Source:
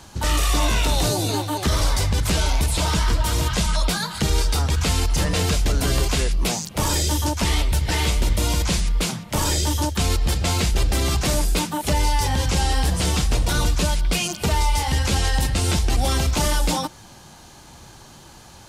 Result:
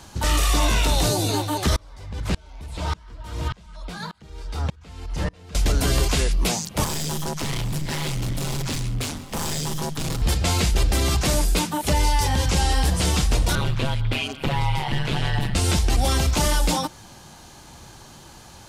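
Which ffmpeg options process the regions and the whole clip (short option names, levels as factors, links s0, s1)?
-filter_complex "[0:a]asettb=1/sr,asplit=3[s0][s1][s2];[s0]atrim=end=1.764[s3];[s1]atrim=start=1.76:end=5.55,asetpts=PTS-STARTPTS,afade=t=in:d=0.004:c=qsin,afade=t=out:st=3.786:d=0.004:c=qsin,lowpass=f=2400:p=1,aeval=exprs='val(0)*pow(10,-31*if(lt(mod(-1.7*n/s,1),2*abs(-1.7)/1000),1-mod(-1.7*n/s,1)/(2*abs(-1.7)/1000),(mod(-1.7*n/s,1)-2*abs(-1.7)/1000)/(1-2*abs(-1.7)/1000))/20)':c=same[s4];[s2]atrim=start=5.546[s5];[s3][s4]acrossfade=d=0.004:c1=hsin:c2=qsin[s6];[s6][s5]acrossfade=d=0.004:c1=qsin:c2=hsin,asettb=1/sr,asplit=3[s7][s8][s9];[s7]atrim=end=6.844[s10];[s8]atrim=start=6.84:end=10.22,asetpts=PTS-STARTPTS,afade=t=in:d=0.004:c=qsin,afade=t=out:st=3.376:d=0.004:c=qsin,aeval=exprs='val(0)*sin(2*PI*77*n/s)':c=same,asoftclip=type=hard:threshold=0.0794,aecho=1:1:790:0.168,atrim=end_sample=149058[s11];[s9]atrim=start=10.216[s12];[s10][s11]acrossfade=d=0.004:c1=hsin:c2=qsin[s13];[s13][s12]acrossfade=d=0.004:c1=qsin:c2=hsin,asettb=1/sr,asplit=3[s14][s15][s16];[s14]atrim=end=13.554[s17];[s15]atrim=start=13.55:end=15.55,asetpts=PTS-STARTPTS,afade=t=in:d=0.004:c=qsin,afade=t=out:st=1.996:d=0.004:c=qsin,highshelf=f=4400:t=q:w=1.5:g=-11,aeval=exprs='val(0)*sin(2*PI*70*n/s)':c=same[s18];[s16]atrim=start=15.546[s19];[s17][s18]acrossfade=d=0.004:c1=hsin:c2=qsin[s20];[s20][s19]acrossfade=d=0.004:c1=qsin:c2=hsin"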